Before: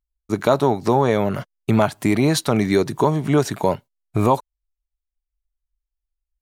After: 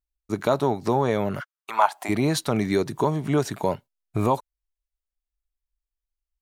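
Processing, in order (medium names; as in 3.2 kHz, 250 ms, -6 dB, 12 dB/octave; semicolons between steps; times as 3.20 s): 1.39–2.08 s: resonant high-pass 1.5 kHz -> 710 Hz, resonance Q 4.9; trim -5 dB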